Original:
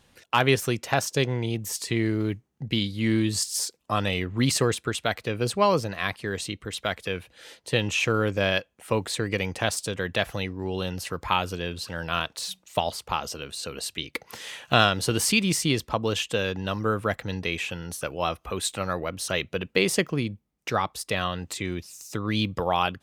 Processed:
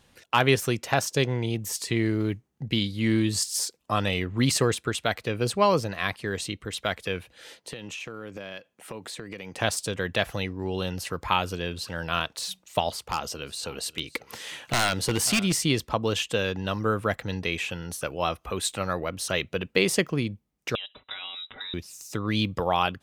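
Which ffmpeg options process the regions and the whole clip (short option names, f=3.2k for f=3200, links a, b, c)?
-filter_complex "[0:a]asettb=1/sr,asplit=3[a][b][c];[a]atrim=end=7.584[d];[b]atrim=start=7.58:end=9.58,asetpts=PTS-STARTPTS,afade=t=in:d=0.004:c=qsin,afade=t=out:st=1.996:d=0.004:c=qsin,highpass=170,bass=f=250:g=3,treble=f=4k:g=-1,acompressor=threshold=-34dB:ratio=8:attack=3.2:release=140:knee=1:detection=peak[e];[c]atrim=start=9.576[f];[d][e]acrossfade=d=0.004:c1=hsin:c2=qsin[g];[g][f]acrossfade=d=0.004:c1=qsin:c2=hsin,asettb=1/sr,asplit=3[h][i][j];[h]atrim=end=12.904[k];[i]atrim=start=12.9:end=15.57,asetpts=PTS-STARTPTS,afade=t=in:d=0.004:c=qsin,afade=t=out:st=2.666:d=0.004:c=qsin,aecho=1:1:540:0.0944,atrim=end_sample=117747,aeval=exprs='0.158*(abs(mod(val(0)/0.158+3,4)-2)-1)':c=same[l];[j]atrim=start=15.566[m];[k][l]acrossfade=d=0.004:c1=hsin:c2=qsin[n];[n][m]acrossfade=d=0.004:c1=qsin:c2=hsin,asettb=1/sr,asplit=3[o][p][q];[o]atrim=end=20.754[r];[p]atrim=start=20.75:end=21.74,asetpts=PTS-STARTPTS,afade=t=in:d=0.004:c=qsin,afade=t=out:st=0.986:d=0.004:c=qsin,aecho=1:1:5.9:0.5,atrim=end_sample=43659,acompressor=threshold=-32dB:ratio=8:attack=3.2:release=140:knee=1:detection=peak,lowpass=f=3.4k:t=q:w=0.5098,lowpass=f=3.4k:t=q:w=0.6013,lowpass=f=3.4k:t=q:w=0.9,lowpass=f=3.4k:t=q:w=2.563,afreqshift=-4000[s];[q]atrim=start=21.736[t];[r][s]acrossfade=d=0.004:c1=hsin:c2=qsin[u];[u][t]acrossfade=d=0.004:c1=qsin:c2=hsin"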